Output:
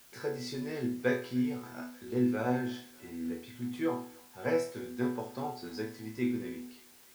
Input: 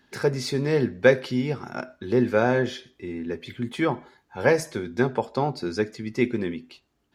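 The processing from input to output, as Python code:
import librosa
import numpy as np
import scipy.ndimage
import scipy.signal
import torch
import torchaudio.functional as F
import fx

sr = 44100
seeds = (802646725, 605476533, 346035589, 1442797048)

y = fx.resonator_bank(x, sr, root=40, chord='sus4', decay_s=0.43)
y = fx.echo_thinned(y, sr, ms=296, feedback_pct=83, hz=530.0, wet_db=-23)
y = fx.quant_dither(y, sr, seeds[0], bits=10, dither='triangular')
y = fx.doubler(y, sr, ms=16.0, db=-12)
y = y * librosa.db_to_amplitude(1.5)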